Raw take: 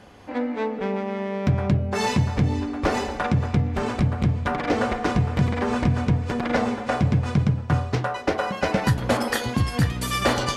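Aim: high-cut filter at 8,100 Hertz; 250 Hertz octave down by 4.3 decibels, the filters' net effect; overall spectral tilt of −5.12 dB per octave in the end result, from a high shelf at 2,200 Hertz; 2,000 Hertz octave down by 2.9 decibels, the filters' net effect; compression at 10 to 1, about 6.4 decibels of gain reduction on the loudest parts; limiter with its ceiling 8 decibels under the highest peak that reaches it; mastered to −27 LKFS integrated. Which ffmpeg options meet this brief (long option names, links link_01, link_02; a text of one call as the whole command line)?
ffmpeg -i in.wav -af "lowpass=8100,equalizer=frequency=250:width_type=o:gain=-6,equalizer=frequency=2000:width_type=o:gain=-7.5,highshelf=frequency=2200:gain=7,acompressor=threshold=-23dB:ratio=10,volume=3.5dB,alimiter=limit=-16.5dB:level=0:latency=1" out.wav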